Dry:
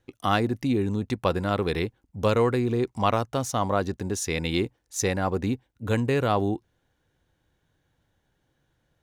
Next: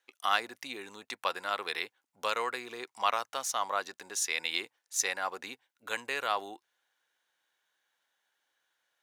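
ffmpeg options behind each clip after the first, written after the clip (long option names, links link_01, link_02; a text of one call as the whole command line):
ffmpeg -i in.wav -af "highpass=1100" out.wav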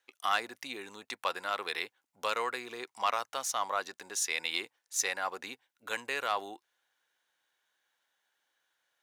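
ffmpeg -i in.wav -af "asoftclip=type=tanh:threshold=-16.5dB" out.wav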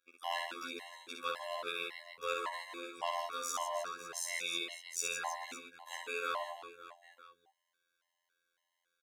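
ffmpeg -i in.wav -af "afftfilt=real='hypot(re,im)*cos(PI*b)':imag='0':win_size=2048:overlap=0.75,aecho=1:1:60|156|309.6|555.4|948.6:0.631|0.398|0.251|0.158|0.1,afftfilt=real='re*gt(sin(2*PI*1.8*pts/sr)*(1-2*mod(floor(b*sr/1024/550),2)),0)':imag='im*gt(sin(2*PI*1.8*pts/sr)*(1-2*mod(floor(b*sr/1024/550),2)),0)':win_size=1024:overlap=0.75" out.wav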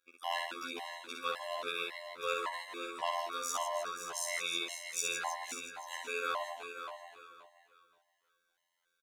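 ffmpeg -i in.wav -af "aecho=1:1:527|1054|1581:0.335|0.0603|0.0109,volume=1.5dB" out.wav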